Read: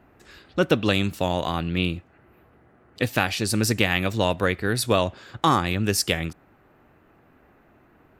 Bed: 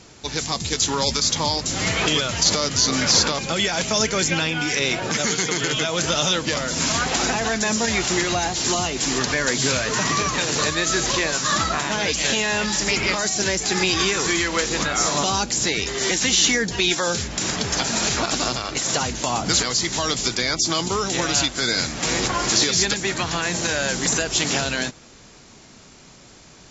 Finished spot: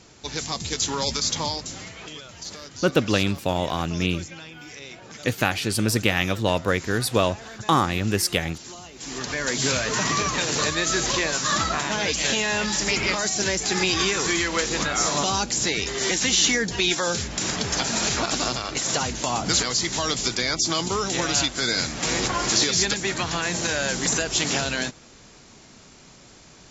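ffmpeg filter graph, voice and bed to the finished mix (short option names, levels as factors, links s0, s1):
-filter_complex "[0:a]adelay=2250,volume=1[s0];[1:a]volume=4.22,afade=t=out:st=1.41:d=0.48:silence=0.188365,afade=t=in:st=8.94:d=0.74:silence=0.149624[s1];[s0][s1]amix=inputs=2:normalize=0"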